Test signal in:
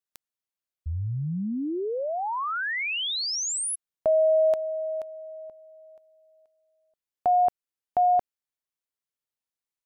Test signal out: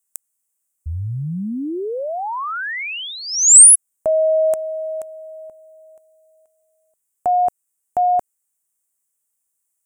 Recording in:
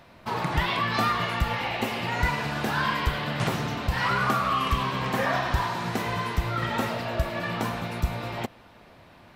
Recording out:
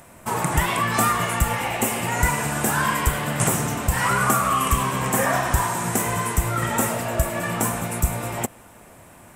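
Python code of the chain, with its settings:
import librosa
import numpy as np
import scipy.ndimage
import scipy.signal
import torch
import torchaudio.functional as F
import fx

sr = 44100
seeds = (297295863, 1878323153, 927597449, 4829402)

y = fx.high_shelf_res(x, sr, hz=6000.0, db=12.5, q=3.0)
y = y * librosa.db_to_amplitude(4.5)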